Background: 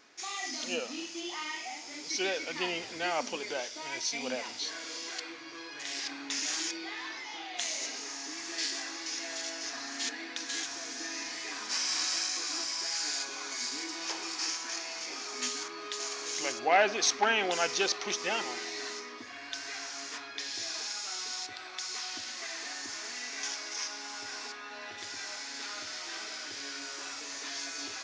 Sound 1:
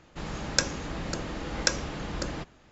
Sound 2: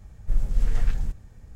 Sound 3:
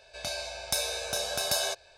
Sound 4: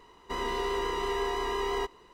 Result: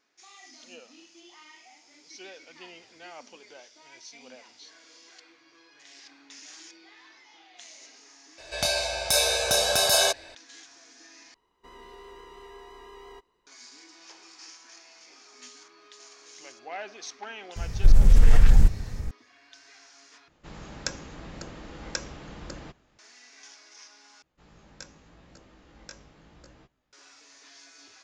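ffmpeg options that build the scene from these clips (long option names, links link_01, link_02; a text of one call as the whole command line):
ffmpeg -i bed.wav -i cue0.wav -i cue1.wav -i cue2.wav -i cue3.wav -filter_complex "[1:a]asplit=2[link_01][link_02];[0:a]volume=-13.5dB[link_03];[3:a]alimiter=level_in=15.5dB:limit=-1dB:release=50:level=0:latency=1[link_04];[2:a]alimiter=level_in=18.5dB:limit=-1dB:release=50:level=0:latency=1[link_05];[link_02]flanger=delay=15.5:depth=3.8:speed=0.82[link_06];[link_03]asplit=4[link_07][link_08][link_09][link_10];[link_07]atrim=end=11.344[link_11];[4:a]atrim=end=2.13,asetpts=PTS-STARTPTS,volume=-16.5dB[link_12];[link_08]atrim=start=13.466:end=20.284[link_13];[link_01]atrim=end=2.71,asetpts=PTS-STARTPTS,volume=-7.5dB[link_14];[link_09]atrim=start=22.986:end=24.224[link_15];[link_06]atrim=end=2.71,asetpts=PTS-STARTPTS,volume=-17dB[link_16];[link_10]atrim=start=26.926[link_17];[link_04]atrim=end=1.97,asetpts=PTS-STARTPTS,volume=-6.5dB,afade=type=in:duration=0.004:curve=hsin,afade=type=out:start_time=1.966:duration=0.004:curve=hsin,adelay=8380[link_18];[link_05]atrim=end=1.55,asetpts=PTS-STARTPTS,volume=-5.5dB,afade=type=in:duration=0.004:curve=hsin,afade=type=out:start_time=1.546:duration=0.004:curve=hsin,adelay=17560[link_19];[link_11][link_12]acrossfade=duration=0.004:curve1=hsin:curve2=hsin[link_20];[link_20][link_13]acrossfade=duration=0.004:curve1=hsin:curve2=hsin[link_21];[link_21][link_14]acrossfade=duration=0.004:curve1=hsin:curve2=hsin[link_22];[link_22][link_15]acrossfade=duration=0.004:curve1=hsin:curve2=hsin[link_23];[link_23][link_16]acrossfade=duration=0.004:curve1=hsin:curve2=hsin[link_24];[link_24][link_17]acrossfade=duration=0.004:curve1=hsin:curve2=hsin[link_25];[link_25][link_18][link_19]amix=inputs=3:normalize=0" out.wav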